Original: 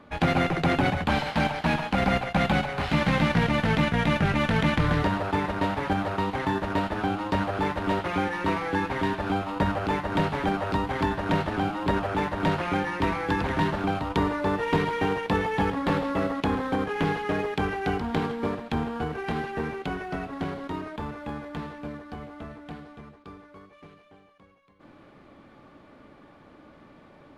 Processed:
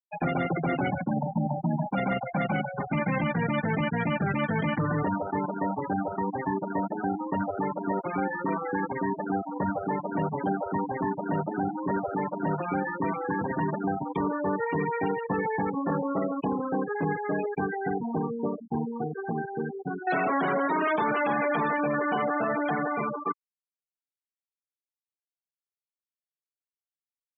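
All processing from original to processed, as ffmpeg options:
-filter_complex "[0:a]asettb=1/sr,asplit=3[s0][s1][s2];[s0]atrim=end=1.064[s3];[s1]atrim=start=1.06:end=1.86,asetpts=PTS-STARTPTS,afade=t=in:d=0.004:c=qsin,afade=t=out:st=0.796:d=0.004:c=qsin,lowpass=1500,equalizer=f=170:t=o:w=1.6:g=9,acompressor=threshold=0.1:ratio=12:attack=3.2:release=140:knee=1:detection=peak[s4];[s2]atrim=start=1.856[s5];[s3][s4]acrossfade=d=0.004:c1=hsin:c2=qsin[s6];[s6][s5]acrossfade=d=0.004:c1=qsin:c2=hsin,asettb=1/sr,asplit=3[s7][s8][s9];[s7]atrim=end=20.074[s10];[s8]atrim=start=20.07:end=23.32,asetpts=PTS-STARTPTS,afade=t=in:d=0.004:c=qsin,afade=t=out:st=3.246:d=0.004:c=qsin,highshelf=f=7800:g=6,asplit=2[s11][s12];[s12]highpass=f=720:p=1,volume=50.1,asoftclip=type=tanh:threshold=0.133[s13];[s11][s13]amix=inputs=2:normalize=0,lowpass=f=6400:p=1,volume=0.501,aecho=1:1:104:0.0891,atrim=end_sample=143325[s14];[s9]atrim=start=23.316[s15];[s10][s14]acrossfade=d=0.004:c1=hsin:c2=qsin[s16];[s16][s15]acrossfade=d=0.004:c1=qsin:c2=hsin,highpass=f=120:w=0.5412,highpass=f=120:w=1.3066,afftfilt=real='re*gte(hypot(re,im),0.0891)':imag='im*gte(hypot(re,im),0.0891)':win_size=1024:overlap=0.75,alimiter=limit=0.112:level=0:latency=1:release=13"

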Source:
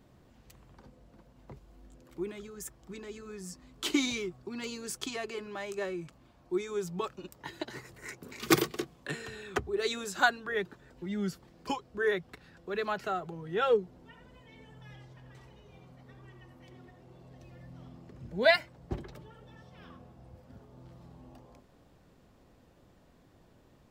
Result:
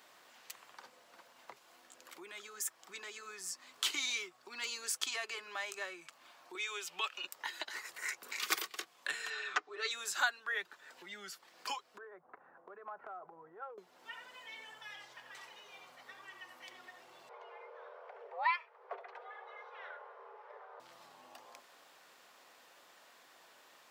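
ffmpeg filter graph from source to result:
-filter_complex "[0:a]asettb=1/sr,asplit=3[s0][s1][s2];[s0]atrim=end=6.554[s3];[s1]atrim=start=6.55:end=7.25,asetpts=PTS-STARTPTS,afade=t=in:d=0.004:c=qsin,afade=t=out:st=0.696:d=0.004:c=qsin,highpass=280,equalizer=f=2800:w=1.8:g=13.5,acompressor=mode=upward:threshold=0.0141:ratio=2.5:attack=3.2:release=140:knee=2.83:detection=peak[s4];[s2]atrim=start=7.246[s5];[s3][s4]acrossfade=d=0.004:c1=hsin:c2=qsin[s6];[s6][s5]acrossfade=d=0.004:c1=qsin:c2=hsin,asettb=1/sr,asplit=3[s7][s8][s9];[s7]atrim=end=9.304[s10];[s8]atrim=start=9.3:end=9.91,asetpts=PTS-STARTPTS,afade=t=in:d=0.004:c=qsin,afade=t=out:st=0.606:d=0.004:c=qsin,highpass=f=210:w=0.5412,highpass=f=210:w=1.3066,equalizer=f=320:t=q:w=4:g=4,equalizer=f=1300:t=q:w=4:g=5,equalizer=f=3400:t=q:w=4:g=-3,lowpass=f=6300:w=0.5412,lowpass=f=6300:w=1.3066,aecho=1:1:6.7:0.94,atrim=end_sample=26901[s11];[s9]atrim=start=9.906[s12];[s10][s11]acrossfade=d=0.004:c1=hsin:c2=qsin[s13];[s13][s12]acrossfade=d=0.004:c1=qsin:c2=hsin,asettb=1/sr,asplit=3[s14][s15][s16];[s14]atrim=end=11.984[s17];[s15]atrim=start=11.98:end=13.78,asetpts=PTS-STARTPTS,afade=t=in:d=0.004:c=qsin,afade=t=out:st=1.796:d=0.004:c=qsin,lowpass=f=1100:w=0.5412,lowpass=f=1100:w=1.3066,acompressor=threshold=0.00891:ratio=10:attack=3.2:release=140:knee=1:detection=peak[s18];[s16]atrim=start=13.776[s19];[s17][s18]acrossfade=d=0.004:c1=hsin:c2=qsin[s20];[s20][s19]acrossfade=d=0.004:c1=qsin:c2=hsin,asettb=1/sr,asplit=3[s21][s22][s23];[s21]atrim=end=17.294[s24];[s22]atrim=start=17.29:end=20.8,asetpts=PTS-STARTPTS,afade=t=in:d=0.004:c=qsin,afade=t=out:st=3.506:d=0.004:c=qsin,lowpass=1600,afreqshift=340[s25];[s23]atrim=start=20.796[s26];[s24][s25]acrossfade=d=0.004:c1=hsin:c2=qsin[s27];[s27][s26]acrossfade=d=0.004:c1=qsin:c2=hsin,acompressor=threshold=0.00316:ratio=2,highpass=1100,volume=3.55"

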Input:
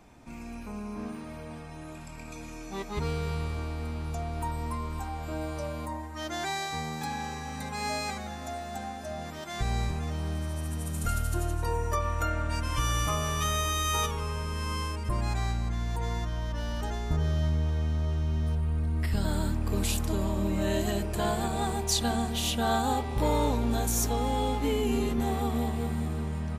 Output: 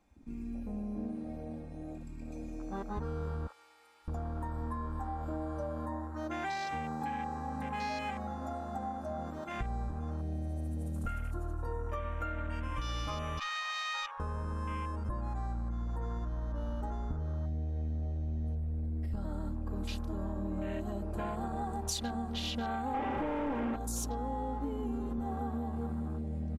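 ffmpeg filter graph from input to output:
-filter_complex "[0:a]asettb=1/sr,asplit=3[s0][s1][s2];[s0]atrim=end=3.474[s3];[s1]atrim=start=3.47:end=4.08,asetpts=PTS-STARTPTS,afade=t=in:d=0.004:c=qsin,afade=t=out:st=0.606:d=0.004:c=qsin,highpass=910,aecho=1:1:2.3:0.62,atrim=end_sample=26901[s4];[s2]atrim=start=4.076[s5];[s3][s4]acrossfade=d=0.004:c1=hsin:c2=qsin[s6];[s6][s5]acrossfade=d=0.004:c1=qsin:c2=hsin,asettb=1/sr,asplit=3[s7][s8][s9];[s7]atrim=end=13.394[s10];[s8]atrim=start=13.39:end=14.2,asetpts=PTS-STARTPTS,afade=t=in:d=0.004:c=qsin,afade=t=out:st=0.806:d=0.004:c=qsin,highpass=f=900:w=0.5412,highpass=f=900:w=1.3066,adynamicsmooth=sensitivity=6:basefreq=1900[s11];[s9]atrim=start=14.196[s12];[s10][s11]acrossfade=d=0.004:c1=hsin:c2=qsin[s13];[s13][s12]acrossfade=d=0.004:c1=qsin:c2=hsin,asettb=1/sr,asplit=3[s14][s15][s16];[s14]atrim=end=22.944[s17];[s15]atrim=start=22.94:end=23.76,asetpts=PTS-STARTPTS,afade=t=in:d=0.004:c=qsin,afade=t=out:st=0.816:d=0.004:c=qsin,highpass=48,equalizer=f=280:t=o:w=0.24:g=7,asplit=2[s18][s19];[s19]highpass=f=720:p=1,volume=112,asoftclip=type=tanh:threshold=0.2[s20];[s18][s20]amix=inputs=2:normalize=0,lowpass=f=1000:p=1,volume=0.501[s21];[s16]atrim=start=23.756[s22];[s17][s21]acrossfade=d=0.004:c1=hsin:c2=qsin[s23];[s23][s22]acrossfade=d=0.004:c1=qsin:c2=hsin,afwtdn=0.0126,aecho=1:1:3.7:0.41,acompressor=threshold=0.0224:ratio=6"

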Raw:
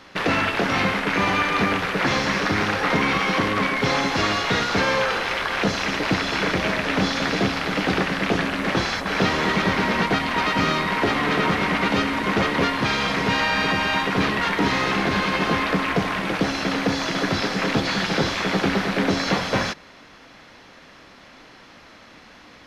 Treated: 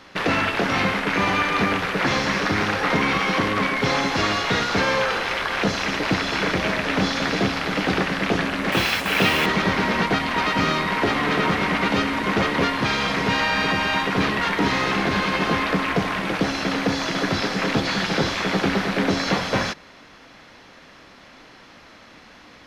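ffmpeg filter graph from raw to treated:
-filter_complex "[0:a]asettb=1/sr,asplit=3[s0][s1][s2];[s0]atrim=end=8.724[s3];[s1]atrim=start=8.72:end=9.46,asetpts=PTS-STARTPTS,afade=t=in:d=0.004:c=qsin,afade=t=out:st=0.736:d=0.004:c=qsin,equalizer=f=2700:t=o:w=0.62:g=9.5,acrusher=bits=4:mix=0:aa=0.5,highpass=46[s4];[s2]atrim=start=9.456[s5];[s3][s4]acrossfade=d=0.004:c1=hsin:c2=qsin[s6];[s6][s5]acrossfade=d=0.004:c1=qsin:c2=hsin"

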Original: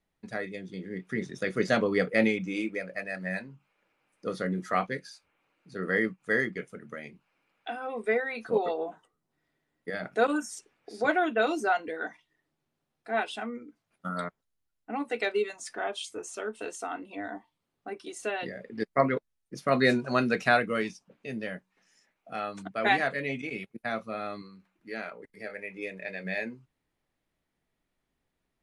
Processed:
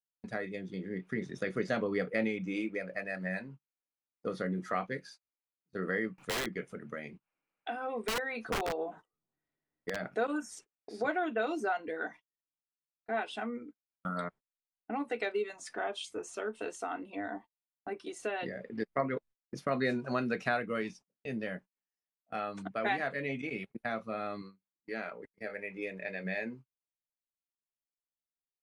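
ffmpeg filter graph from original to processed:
-filter_complex "[0:a]asettb=1/sr,asplit=3[s0][s1][s2];[s0]atrim=end=6.184[s3];[s1]atrim=start=6.18:end=9.96,asetpts=PTS-STARTPTS,afade=t=in:d=0.004:c=qsin,afade=t=out:st=3.776:d=0.004:c=qsin,acompressor=mode=upward:threshold=0.01:ratio=2.5:attack=3.2:release=140:knee=2.83:detection=peak,aeval=exprs='(mod(12.6*val(0)+1,2)-1)/12.6':c=same[s4];[s2]atrim=start=9.956[s5];[s3][s4]acrossfade=d=0.004:c1=hsin:c2=qsin[s6];[s6][s5]acrossfade=d=0.004:c1=qsin:c2=hsin,agate=range=0.0251:threshold=0.00447:ratio=16:detection=peak,highshelf=f=4000:g=-7.5,acompressor=threshold=0.0224:ratio=2"

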